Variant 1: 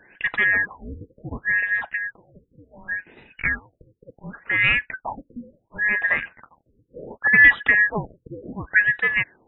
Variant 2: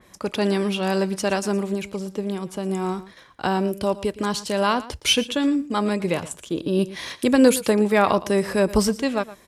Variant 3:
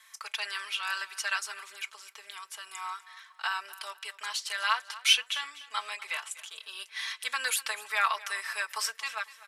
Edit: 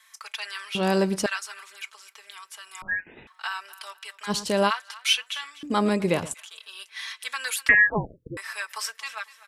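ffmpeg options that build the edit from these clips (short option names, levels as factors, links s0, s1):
-filter_complex "[1:a]asplit=3[s0][s1][s2];[0:a]asplit=2[s3][s4];[2:a]asplit=6[s5][s6][s7][s8][s9][s10];[s5]atrim=end=0.752[s11];[s0]atrim=start=0.748:end=1.262[s12];[s6]atrim=start=1.258:end=2.822[s13];[s3]atrim=start=2.818:end=3.272[s14];[s7]atrim=start=3.268:end=4.31[s15];[s1]atrim=start=4.27:end=4.71[s16];[s8]atrim=start=4.67:end=5.632[s17];[s2]atrim=start=5.628:end=6.342[s18];[s9]atrim=start=6.338:end=7.692[s19];[s4]atrim=start=7.688:end=8.372[s20];[s10]atrim=start=8.368[s21];[s11][s12]acrossfade=d=0.004:c1=hsin:c2=hsin[s22];[s22][s13]acrossfade=d=0.004:c1=hsin:c2=hsin[s23];[s23][s14]acrossfade=d=0.004:c1=hsin:c2=hsin[s24];[s24][s15]acrossfade=d=0.004:c1=hsin:c2=hsin[s25];[s25][s16]acrossfade=d=0.04:c1=tri:c2=tri[s26];[s26][s17]acrossfade=d=0.04:c1=tri:c2=tri[s27];[s27][s18]acrossfade=d=0.004:c1=hsin:c2=hsin[s28];[s28][s19]acrossfade=d=0.004:c1=hsin:c2=hsin[s29];[s29][s20]acrossfade=d=0.004:c1=hsin:c2=hsin[s30];[s30][s21]acrossfade=d=0.004:c1=hsin:c2=hsin"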